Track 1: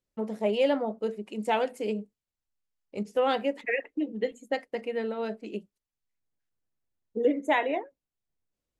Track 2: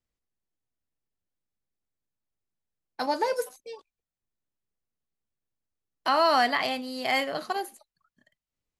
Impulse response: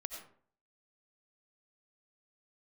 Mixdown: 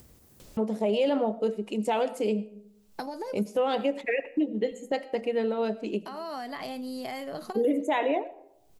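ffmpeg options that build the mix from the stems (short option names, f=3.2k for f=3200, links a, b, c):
-filter_complex "[0:a]equalizer=f=1.8k:w=1.6:g=-5.5,adelay=400,volume=2.5dB,asplit=2[a][b];[b]volume=-10.5dB[c];[1:a]highpass=54,equalizer=f=2.4k:w=0.31:g=-12,acompressor=threshold=-39dB:ratio=10,volume=-2dB[d];[2:a]atrim=start_sample=2205[e];[c][e]afir=irnorm=-1:irlink=0[f];[a][d][f]amix=inputs=3:normalize=0,acompressor=mode=upward:threshold=-26dB:ratio=2.5,alimiter=limit=-17.5dB:level=0:latency=1:release=39"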